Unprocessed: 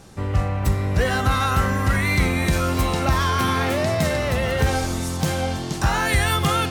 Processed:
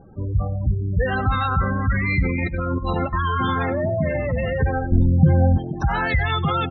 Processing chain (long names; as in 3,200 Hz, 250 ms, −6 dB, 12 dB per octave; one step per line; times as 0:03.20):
low-pass filter 6,300 Hz 12 dB per octave
gate on every frequency bin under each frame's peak −15 dB strong
0:02.36–0:03.13: compressor whose output falls as the input rises −23 dBFS, ratio −0.5
0:04.92–0:05.58: spectral tilt −3.5 dB per octave
repeating echo 97 ms, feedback 18%, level −22.5 dB